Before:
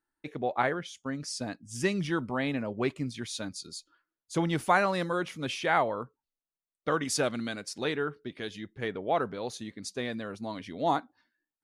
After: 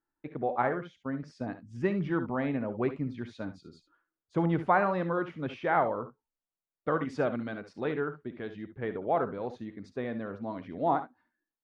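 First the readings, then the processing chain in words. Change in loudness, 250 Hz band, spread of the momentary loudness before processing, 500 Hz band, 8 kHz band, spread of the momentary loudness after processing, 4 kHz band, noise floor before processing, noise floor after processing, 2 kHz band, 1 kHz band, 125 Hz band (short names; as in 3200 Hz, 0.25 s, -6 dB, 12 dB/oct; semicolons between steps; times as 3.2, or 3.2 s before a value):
-0.5 dB, +0.5 dB, 12 LU, +0.5 dB, under -25 dB, 13 LU, -15.5 dB, under -85 dBFS, under -85 dBFS, -4.0 dB, 0.0 dB, +1.0 dB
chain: LPF 1500 Hz 12 dB/oct; on a send: early reflections 59 ms -14.5 dB, 71 ms -13 dB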